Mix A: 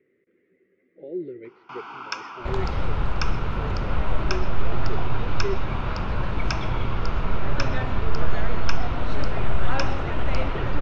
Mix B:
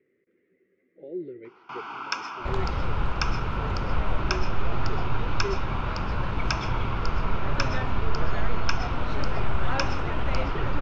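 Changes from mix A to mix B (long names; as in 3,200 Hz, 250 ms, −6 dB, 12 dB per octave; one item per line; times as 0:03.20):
speech −3.0 dB
first sound: send +11.0 dB
second sound: send −8.0 dB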